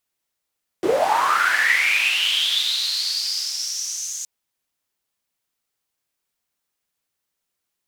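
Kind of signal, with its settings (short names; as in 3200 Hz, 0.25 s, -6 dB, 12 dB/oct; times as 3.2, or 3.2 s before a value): swept filtered noise white, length 3.42 s bandpass, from 330 Hz, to 6600 Hz, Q 8.7, linear, gain ramp -21 dB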